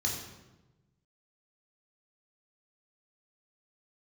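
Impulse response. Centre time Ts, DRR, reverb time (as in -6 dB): 46 ms, -2.0 dB, 1.1 s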